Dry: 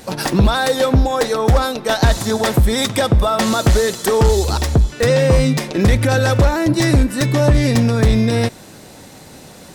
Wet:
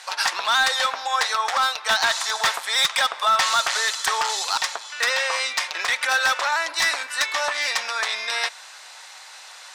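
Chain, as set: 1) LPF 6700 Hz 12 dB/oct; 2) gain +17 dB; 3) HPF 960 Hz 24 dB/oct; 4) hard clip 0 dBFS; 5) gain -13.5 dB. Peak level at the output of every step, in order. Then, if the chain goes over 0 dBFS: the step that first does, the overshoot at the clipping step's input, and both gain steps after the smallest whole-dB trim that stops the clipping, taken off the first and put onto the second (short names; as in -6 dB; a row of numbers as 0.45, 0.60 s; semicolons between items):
-6.5, +10.5, +9.0, 0.0, -13.5 dBFS; step 2, 9.0 dB; step 2 +8 dB, step 5 -4.5 dB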